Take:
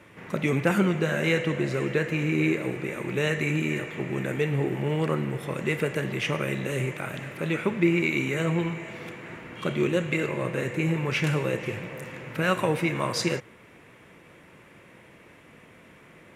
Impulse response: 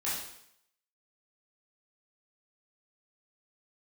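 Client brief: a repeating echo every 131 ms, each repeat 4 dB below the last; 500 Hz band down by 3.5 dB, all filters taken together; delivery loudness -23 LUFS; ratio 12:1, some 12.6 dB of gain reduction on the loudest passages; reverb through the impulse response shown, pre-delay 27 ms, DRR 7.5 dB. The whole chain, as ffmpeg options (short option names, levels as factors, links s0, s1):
-filter_complex "[0:a]equalizer=f=500:t=o:g=-4.5,acompressor=threshold=0.0282:ratio=12,aecho=1:1:131|262|393|524|655|786|917|1048|1179:0.631|0.398|0.25|0.158|0.0994|0.0626|0.0394|0.0249|0.0157,asplit=2[s0][s1];[1:a]atrim=start_sample=2205,adelay=27[s2];[s1][s2]afir=irnorm=-1:irlink=0,volume=0.224[s3];[s0][s3]amix=inputs=2:normalize=0,volume=3.35"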